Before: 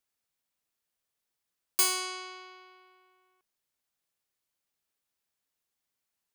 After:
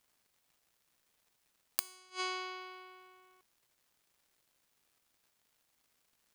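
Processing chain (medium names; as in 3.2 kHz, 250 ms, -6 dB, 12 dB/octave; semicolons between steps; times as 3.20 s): inverted gate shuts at -26 dBFS, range -32 dB; crackle 300 per s -68 dBFS; trim +6.5 dB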